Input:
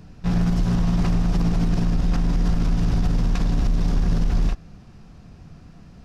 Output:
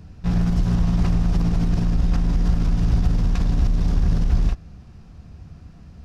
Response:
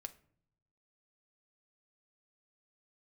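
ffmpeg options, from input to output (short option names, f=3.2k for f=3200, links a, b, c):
-af "equalizer=f=71:t=o:w=1.1:g=10,volume=-2dB"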